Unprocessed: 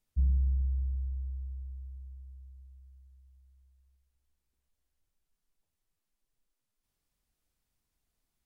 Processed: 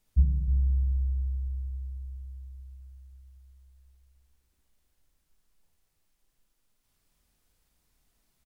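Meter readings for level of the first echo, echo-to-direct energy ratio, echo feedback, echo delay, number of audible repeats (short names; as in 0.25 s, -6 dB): -3.5 dB, -1.5 dB, no steady repeat, 54 ms, 3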